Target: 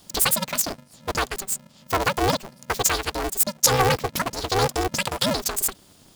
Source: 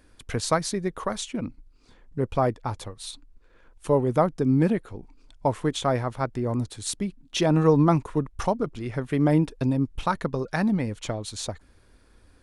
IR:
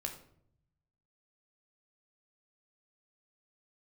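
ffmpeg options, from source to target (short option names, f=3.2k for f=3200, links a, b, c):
-af "highshelf=f=1.6k:t=q:w=1.5:g=12,asetrate=89082,aresample=44100,aeval=exprs='val(0)*sgn(sin(2*PI*190*n/s))':c=same"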